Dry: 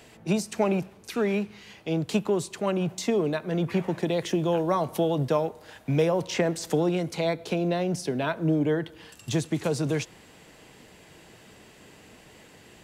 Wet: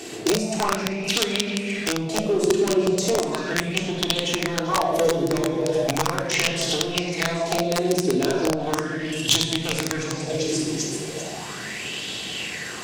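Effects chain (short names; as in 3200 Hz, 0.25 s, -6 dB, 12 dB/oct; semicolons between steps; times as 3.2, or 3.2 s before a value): HPF 45 Hz 6 dB/oct; low shelf 64 Hz -11.5 dB; on a send: delay with a stepping band-pass 0.392 s, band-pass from 3900 Hz, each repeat 0.7 oct, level -5.5 dB; on the sum: hard clip -22 dBFS, distortion -14 dB; transient shaper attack +1 dB, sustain -5 dB; shoebox room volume 1900 m³, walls mixed, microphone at 3.5 m; compressor 8:1, threshold -32 dBFS, peak gain reduction 18.5 dB; wrapped overs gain 25.5 dB; bell 6300 Hz +10.5 dB 1.6 oct; notches 50/100/150 Hz; LFO bell 0.37 Hz 330–3400 Hz +13 dB; gain +7 dB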